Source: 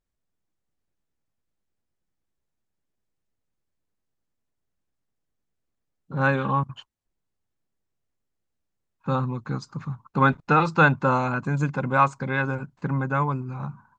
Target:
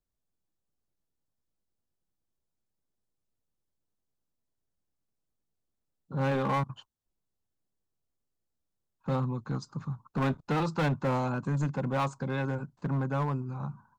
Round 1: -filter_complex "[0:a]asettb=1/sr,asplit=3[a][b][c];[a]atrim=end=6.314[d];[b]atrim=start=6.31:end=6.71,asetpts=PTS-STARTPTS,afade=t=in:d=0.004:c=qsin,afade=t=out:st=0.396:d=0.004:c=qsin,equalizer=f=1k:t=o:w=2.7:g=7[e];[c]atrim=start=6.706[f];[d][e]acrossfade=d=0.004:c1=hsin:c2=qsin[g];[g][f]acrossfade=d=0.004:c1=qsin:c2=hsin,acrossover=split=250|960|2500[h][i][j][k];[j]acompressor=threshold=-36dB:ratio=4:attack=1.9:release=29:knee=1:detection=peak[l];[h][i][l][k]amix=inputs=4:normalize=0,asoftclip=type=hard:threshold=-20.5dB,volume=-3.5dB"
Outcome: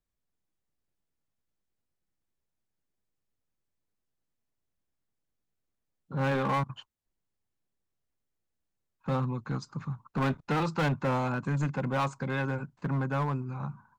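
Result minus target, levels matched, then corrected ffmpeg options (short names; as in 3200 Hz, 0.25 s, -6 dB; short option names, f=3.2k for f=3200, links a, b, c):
2000 Hz band +2.5 dB
-filter_complex "[0:a]asettb=1/sr,asplit=3[a][b][c];[a]atrim=end=6.314[d];[b]atrim=start=6.31:end=6.71,asetpts=PTS-STARTPTS,afade=t=in:d=0.004:c=qsin,afade=t=out:st=0.396:d=0.004:c=qsin,equalizer=f=1k:t=o:w=2.7:g=7[e];[c]atrim=start=6.706[f];[d][e]acrossfade=d=0.004:c1=hsin:c2=qsin[g];[g][f]acrossfade=d=0.004:c1=qsin:c2=hsin,acrossover=split=250|960|2500[h][i][j][k];[j]acompressor=threshold=-36dB:ratio=4:attack=1.9:release=29:knee=1:detection=peak,lowpass=1.6k[l];[h][i][l][k]amix=inputs=4:normalize=0,asoftclip=type=hard:threshold=-20.5dB,volume=-3.5dB"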